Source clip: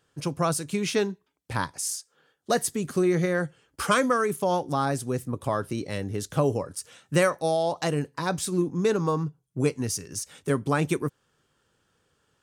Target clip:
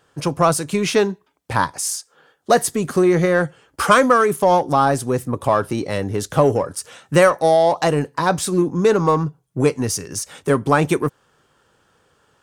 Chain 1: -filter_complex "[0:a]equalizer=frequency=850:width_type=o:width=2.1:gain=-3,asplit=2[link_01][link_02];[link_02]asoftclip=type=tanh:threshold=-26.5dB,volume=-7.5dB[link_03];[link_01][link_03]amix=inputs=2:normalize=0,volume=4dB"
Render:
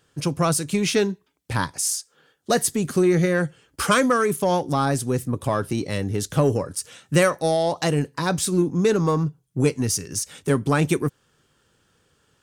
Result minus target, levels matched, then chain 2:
1,000 Hz band −4.0 dB
-filter_complex "[0:a]equalizer=frequency=850:width_type=o:width=2.1:gain=6.5,asplit=2[link_01][link_02];[link_02]asoftclip=type=tanh:threshold=-26.5dB,volume=-7.5dB[link_03];[link_01][link_03]amix=inputs=2:normalize=0,volume=4dB"

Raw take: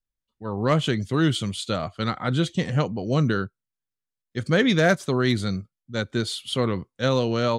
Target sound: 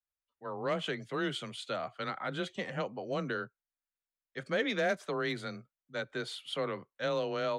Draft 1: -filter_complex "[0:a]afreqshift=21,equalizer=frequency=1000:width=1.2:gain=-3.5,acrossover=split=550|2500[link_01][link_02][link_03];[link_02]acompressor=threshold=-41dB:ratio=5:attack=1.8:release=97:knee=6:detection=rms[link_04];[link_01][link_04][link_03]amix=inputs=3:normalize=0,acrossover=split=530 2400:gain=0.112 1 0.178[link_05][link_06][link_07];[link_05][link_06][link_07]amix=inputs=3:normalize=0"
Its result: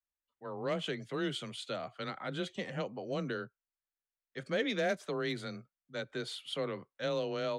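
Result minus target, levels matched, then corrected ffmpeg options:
downward compressor: peak gain reduction +7 dB
-filter_complex "[0:a]afreqshift=21,equalizer=frequency=1000:width=1.2:gain=-3.5,acrossover=split=550|2500[link_01][link_02][link_03];[link_02]acompressor=threshold=-32.5dB:ratio=5:attack=1.8:release=97:knee=6:detection=rms[link_04];[link_01][link_04][link_03]amix=inputs=3:normalize=0,acrossover=split=530 2400:gain=0.112 1 0.178[link_05][link_06][link_07];[link_05][link_06][link_07]amix=inputs=3:normalize=0"

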